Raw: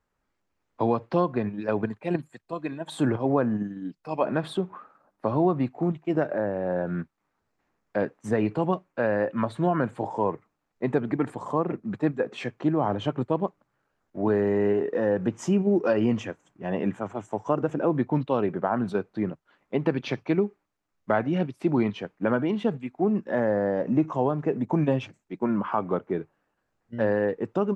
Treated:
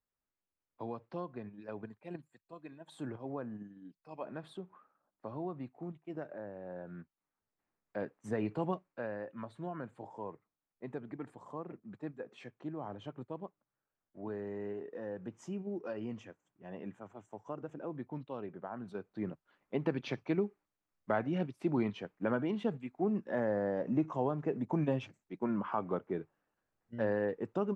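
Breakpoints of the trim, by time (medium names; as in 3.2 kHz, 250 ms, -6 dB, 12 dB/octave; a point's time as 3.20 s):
6.96 s -17.5 dB
8.65 s -9 dB
9.24 s -17.5 dB
18.85 s -17.5 dB
19.32 s -8.5 dB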